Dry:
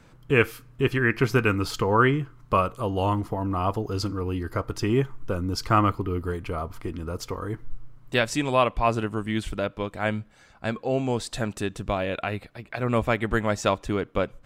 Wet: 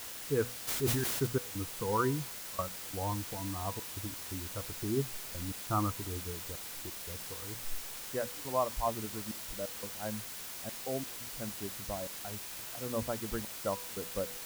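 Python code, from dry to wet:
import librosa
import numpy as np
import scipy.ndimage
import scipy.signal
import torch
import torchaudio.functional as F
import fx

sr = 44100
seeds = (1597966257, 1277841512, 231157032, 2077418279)

y = fx.bin_expand(x, sr, power=1.5)
y = scipy.signal.sosfilt(scipy.signal.butter(4, 1300.0, 'lowpass', fs=sr, output='sos'), y)
y = fx.hum_notches(y, sr, base_hz=60, count=4)
y = fx.step_gate(y, sr, bpm=87, pattern='.xxxxx.x', floor_db=-24.0, edge_ms=4.5)
y = fx.quant_dither(y, sr, seeds[0], bits=6, dither='triangular')
y = fx.comb_fb(y, sr, f0_hz=490.0, decay_s=0.61, harmonics='all', damping=0.0, mix_pct=60)
y = fx.sustainer(y, sr, db_per_s=25.0, at=(0.67, 1.25), fade=0.02)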